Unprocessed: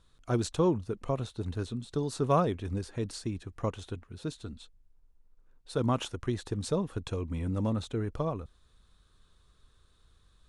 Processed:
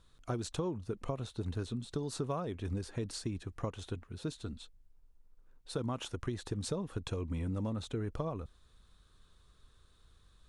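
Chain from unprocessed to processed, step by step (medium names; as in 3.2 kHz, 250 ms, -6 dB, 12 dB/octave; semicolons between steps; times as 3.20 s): compression 10:1, threshold -32 dBFS, peak gain reduction 13 dB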